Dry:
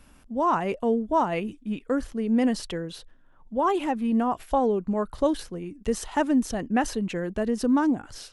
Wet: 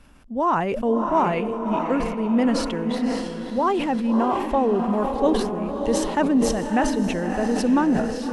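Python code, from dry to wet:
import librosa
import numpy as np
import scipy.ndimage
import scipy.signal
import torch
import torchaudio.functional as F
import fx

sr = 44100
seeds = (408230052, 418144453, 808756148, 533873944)

y = fx.high_shelf(x, sr, hz=8100.0, db=-10.5)
y = fx.echo_diffused(y, sr, ms=615, feedback_pct=46, wet_db=-5.5)
y = fx.sustainer(y, sr, db_per_s=44.0)
y = y * 10.0 ** (2.0 / 20.0)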